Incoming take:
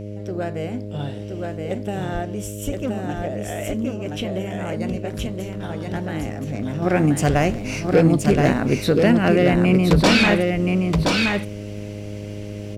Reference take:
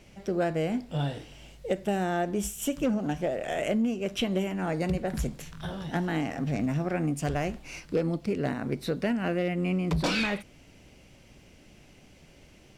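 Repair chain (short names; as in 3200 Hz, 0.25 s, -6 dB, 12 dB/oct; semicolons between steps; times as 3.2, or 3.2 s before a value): de-hum 103.1 Hz, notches 6; de-plosive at 2.13/2.65/9.51; inverse comb 1.023 s -3.5 dB; gain correction -11 dB, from 6.82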